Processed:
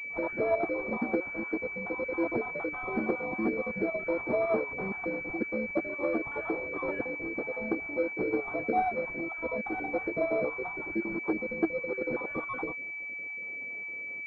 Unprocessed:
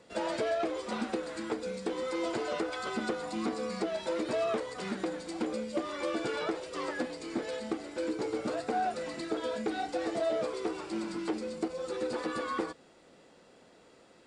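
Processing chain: random spectral dropouts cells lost 34%; flange 0.53 Hz, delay 0.6 ms, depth 6.9 ms, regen +79%; pulse-width modulation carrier 2300 Hz; gain +8.5 dB

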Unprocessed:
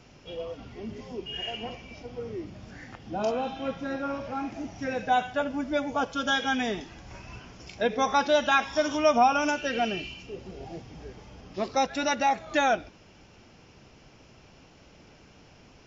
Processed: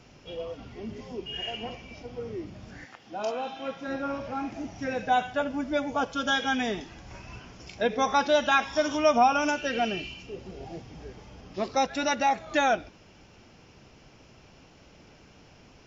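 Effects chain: 2.84–3.87 HPF 860 Hz -> 360 Hz 6 dB/oct

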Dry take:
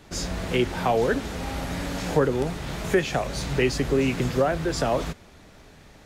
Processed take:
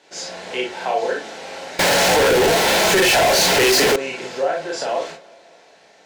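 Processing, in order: Chebyshev band-pass 540–6800 Hz, order 2; tape echo 0.189 s, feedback 73%, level -23.5 dB; reverb RT60 0.20 s, pre-delay 29 ms, DRR -1.5 dB; 1.79–3.96 fuzz box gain 45 dB, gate -42 dBFS; notch 1200 Hz, Q 5.6

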